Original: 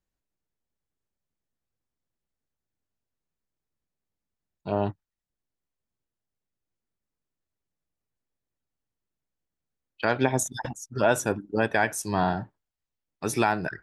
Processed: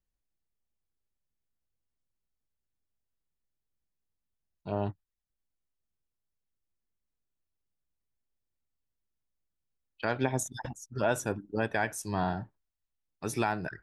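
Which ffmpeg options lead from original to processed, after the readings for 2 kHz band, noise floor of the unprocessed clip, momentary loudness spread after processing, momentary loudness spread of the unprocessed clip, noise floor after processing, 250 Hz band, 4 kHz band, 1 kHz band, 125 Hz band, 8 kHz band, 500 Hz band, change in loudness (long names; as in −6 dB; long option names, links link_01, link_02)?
−6.5 dB, below −85 dBFS, 10 LU, 11 LU, −85 dBFS, −5.5 dB, −6.5 dB, −6.5 dB, −3.5 dB, −6.5 dB, −6.5 dB, −6.0 dB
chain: -af "lowshelf=frequency=79:gain=10,volume=-6.5dB"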